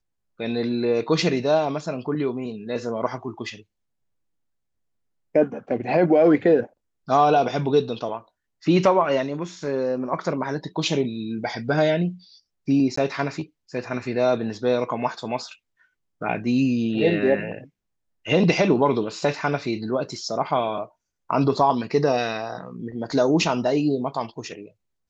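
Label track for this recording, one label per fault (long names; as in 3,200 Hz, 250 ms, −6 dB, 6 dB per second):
12.960000	12.970000	drop-out 14 ms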